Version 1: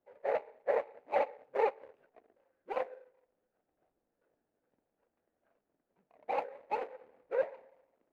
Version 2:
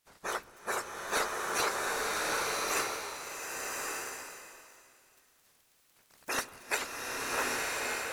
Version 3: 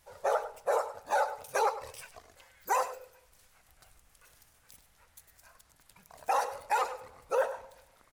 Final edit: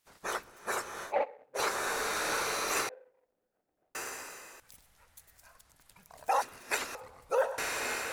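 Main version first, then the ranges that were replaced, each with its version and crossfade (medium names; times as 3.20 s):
2
1.08–1.59 s: from 1, crossfade 0.10 s
2.89–3.95 s: from 1
4.60–6.42 s: from 3
6.95–7.58 s: from 3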